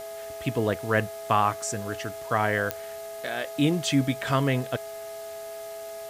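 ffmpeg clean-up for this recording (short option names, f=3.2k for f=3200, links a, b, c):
-af "adeclick=t=4,bandreject=f=417.2:t=h:w=4,bandreject=f=834.4:t=h:w=4,bandreject=f=1.2516k:t=h:w=4,bandreject=f=1.6688k:t=h:w=4,bandreject=f=2.086k:t=h:w=4,bandreject=f=660:w=30,afwtdn=0.0045"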